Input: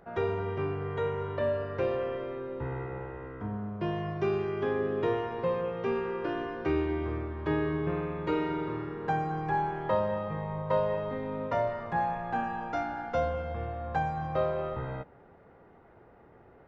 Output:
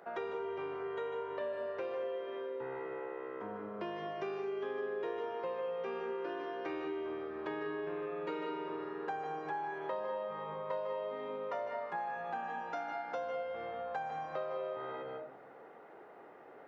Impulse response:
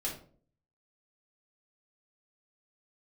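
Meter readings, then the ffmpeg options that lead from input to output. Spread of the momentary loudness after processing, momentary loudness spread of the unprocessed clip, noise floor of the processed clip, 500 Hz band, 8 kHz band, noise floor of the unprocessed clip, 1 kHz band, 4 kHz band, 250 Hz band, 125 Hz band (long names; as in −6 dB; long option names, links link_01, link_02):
5 LU, 7 LU, −55 dBFS, −6.5 dB, can't be measured, −57 dBFS, −7.0 dB, −5.0 dB, −11.5 dB, −23.0 dB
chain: -filter_complex "[0:a]highpass=390,asplit=2[link_01][link_02];[1:a]atrim=start_sample=2205,adelay=147[link_03];[link_02][link_03]afir=irnorm=-1:irlink=0,volume=-7.5dB[link_04];[link_01][link_04]amix=inputs=2:normalize=0,acompressor=threshold=-43dB:ratio=3,volume=3dB"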